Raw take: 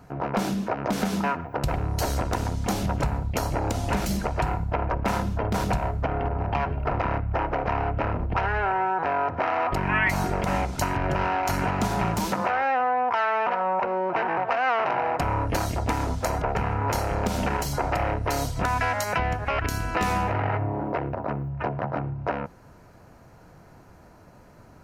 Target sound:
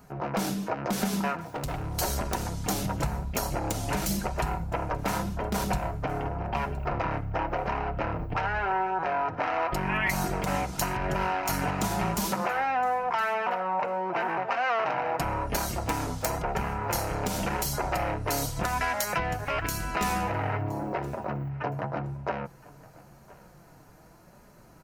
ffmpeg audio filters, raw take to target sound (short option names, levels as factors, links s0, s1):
-filter_complex "[0:a]crystalizer=i=1.5:c=0,aeval=exprs='(mod(3.16*val(0)+1,2)-1)/3.16':c=same,flanger=delay=4.8:depth=2.1:regen=-33:speed=0.9:shape=triangular,asettb=1/sr,asplit=3[s0][s1][s2];[s0]atrim=end=1.494[s3];[s1]atrim=start=1.49:end=1.97,asetpts=PTS-STARTPTS,afade=t=in:d=0.004:c=qsin,afade=t=out:st=0.476:d=0.004:c=qsin,volume=26.6,asoftclip=hard,volume=0.0376[s4];[s2]atrim=start=1.966[s5];[s3][s4]acrossfade=d=0.004:c1=hsin:c2=qsin[s6];[s6][s5]acrossfade=d=0.004:c1=qsin:c2=hsin,asplit=2[s7][s8];[s8]aecho=0:1:1017|2034:0.0794|0.0175[s9];[s7][s9]amix=inputs=2:normalize=0"